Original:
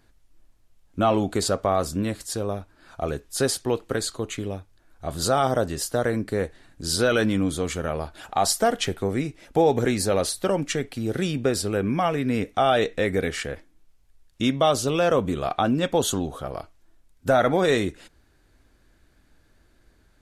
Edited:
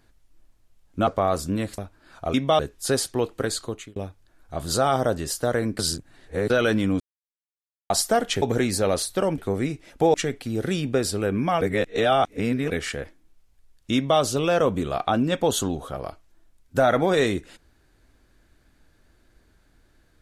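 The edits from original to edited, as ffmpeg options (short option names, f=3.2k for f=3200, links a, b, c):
-filter_complex "[0:a]asplit=15[a][b][c][d][e][f][g][h][i][j][k][l][m][n][o];[a]atrim=end=1.072[p];[b]atrim=start=1.538:end=2.252[q];[c]atrim=start=2.538:end=3.102[r];[d]atrim=start=14.458:end=14.712[s];[e]atrim=start=3.098:end=4.47,asetpts=PTS-STARTPTS,afade=t=out:st=1.062:d=0.31[t];[f]atrim=start=4.47:end=6.302,asetpts=PTS-STARTPTS,afade=t=in:d=0.004:c=hsin[u];[g]atrim=start=6.298:end=7.012,asetpts=PTS-STARTPTS,areverse[v];[h]atrim=start=7.008:end=7.51,asetpts=PTS-STARTPTS,afade=t=out:st=0.498:d=0.004:c=hsin[w];[i]atrim=start=7.51:end=8.41,asetpts=PTS-STARTPTS,volume=0[x];[j]atrim=start=8.41:end=8.932,asetpts=PTS-STARTPTS,afade=t=in:d=0.004:c=hsin[y];[k]atrim=start=9.688:end=10.652[z];[l]atrim=start=8.928:end=9.692[aa];[m]atrim=start=10.648:end=12.122[ab];[n]atrim=start=12.118:end=13.212,asetpts=PTS-STARTPTS,areverse[ac];[o]atrim=start=13.208[ad];[p][q]acrossfade=d=0.004:c1=hsin:c2=hsin[ae];[ae][r]acrossfade=d=0.004:c1=hsin:c2=hsin[af];[af][s]acrossfade=d=0.004:c1=hsin:c2=hsin[ag];[t][u]concat=n=2:v=0:a=1[ah];[ag][ah]acrossfade=d=0.004:c1=hsin:c2=hsin[ai];[ai][v]acrossfade=d=0.004:c1=hsin:c2=hsin[aj];[w][x][y]concat=n=3:v=0:a=1[ak];[aj][ak]acrossfade=d=0.004:c1=hsin:c2=hsin[al];[al][z]acrossfade=d=0.004:c1=hsin:c2=hsin[am];[am][aa]acrossfade=d=0.004:c1=hsin:c2=hsin[an];[an][ab]acrossfade=d=0.004:c1=hsin:c2=hsin[ao];[ao][ac]acrossfade=d=0.004:c1=hsin:c2=hsin[ap];[ap][ad]acrossfade=d=0.004:c1=hsin:c2=hsin"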